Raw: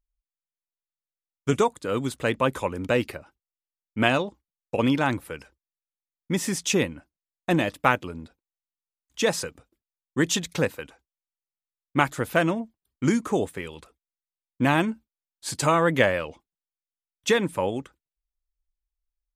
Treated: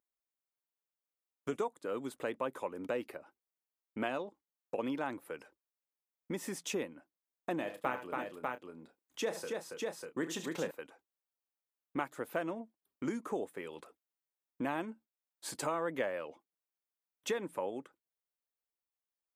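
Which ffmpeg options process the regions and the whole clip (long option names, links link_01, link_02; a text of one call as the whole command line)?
ffmpeg -i in.wav -filter_complex "[0:a]asettb=1/sr,asplit=3[link_01][link_02][link_03];[link_01]atrim=end=7.574[link_04];[link_02]atrim=start=7.57:end=10.71,asetpts=PTS-STARTPTS,afade=type=in:duration=0.004:curve=qsin,afade=type=out:start_time=3.136:duration=0.004:curve=qsin,asplit=2[link_05][link_06];[link_06]adelay=31,volume=-11.5dB[link_07];[link_05][link_07]amix=inputs=2:normalize=0,atrim=end_sample=138474,aecho=1:1:72|78|280|596:0.126|0.224|0.473|0.531,atrim=end_sample=138474[link_08];[link_03]atrim=start=10.706[link_09];[link_04][link_08]acrossfade=duration=0.004:curve1=hsin:curve2=qsin[link_10];[link_10][link_09]acrossfade=duration=0.004:curve1=qsin:curve2=hsin,highpass=310,equalizer=frequency=5100:width=0.36:gain=-10,acompressor=threshold=-48dB:ratio=2,volume=3.5dB" out.wav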